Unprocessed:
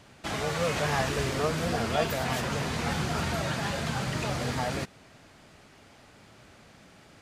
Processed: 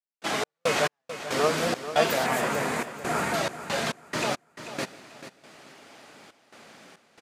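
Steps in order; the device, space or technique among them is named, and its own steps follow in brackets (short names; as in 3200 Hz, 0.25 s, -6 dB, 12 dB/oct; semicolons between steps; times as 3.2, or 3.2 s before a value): HPF 260 Hz 12 dB/oct; 2.26–3.34 band shelf 4100 Hz -8.5 dB 1.3 oct; echo 0.162 s -21 dB; trance gate with a delay (step gate ".x.x..xx.xxxx.xx" 69 bpm -60 dB; feedback echo 0.44 s, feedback 24%, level -12 dB); gain +5.5 dB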